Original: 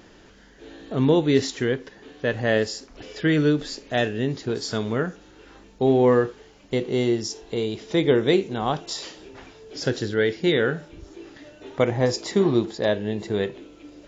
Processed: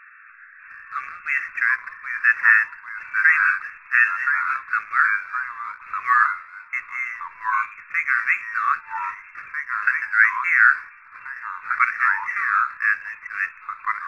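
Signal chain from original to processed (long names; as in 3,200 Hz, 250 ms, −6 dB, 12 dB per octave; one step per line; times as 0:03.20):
spectral tilt +2.5 dB per octave
brick-wall band-pass 1,100–2,700 Hz
parametric band 1,400 Hz +14 dB 1.6 octaves
in parallel at −10 dB: slack as between gear wheels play −29 dBFS
on the sum: delay with pitch and tempo change per echo 624 ms, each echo −2 semitones, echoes 2, each echo −6 dB
level −1.5 dB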